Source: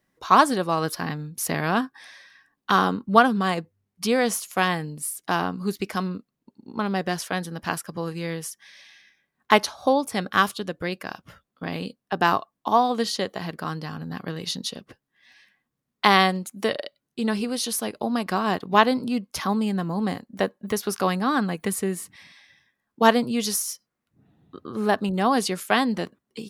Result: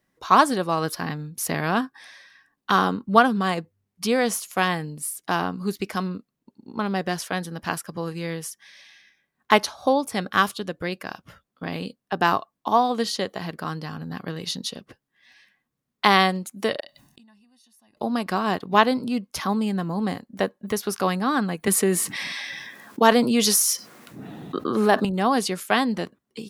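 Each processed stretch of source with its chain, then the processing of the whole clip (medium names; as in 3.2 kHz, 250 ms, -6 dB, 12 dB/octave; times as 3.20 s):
16.80–17.97 s: comb 1.1 ms, depth 83% + inverted gate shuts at -31 dBFS, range -34 dB + decay stretcher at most 63 dB/s
21.67–25.05 s: high-pass 200 Hz + level flattener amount 50%
whole clip: none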